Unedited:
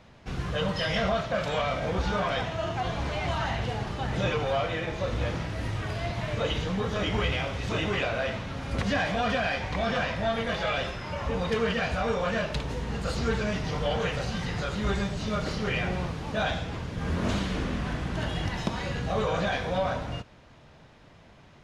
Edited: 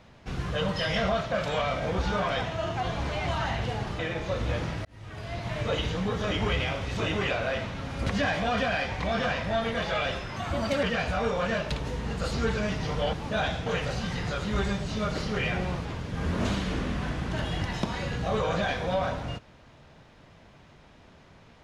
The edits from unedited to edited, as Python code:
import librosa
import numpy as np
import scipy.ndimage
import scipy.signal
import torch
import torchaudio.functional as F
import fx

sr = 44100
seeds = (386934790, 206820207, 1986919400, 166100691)

y = fx.edit(x, sr, fx.cut(start_s=3.99, length_s=0.72),
    fx.fade_in_span(start_s=5.57, length_s=0.74),
    fx.speed_span(start_s=11.08, length_s=0.59, speed=1.25),
    fx.move(start_s=16.16, length_s=0.53, to_s=13.97), tone=tone)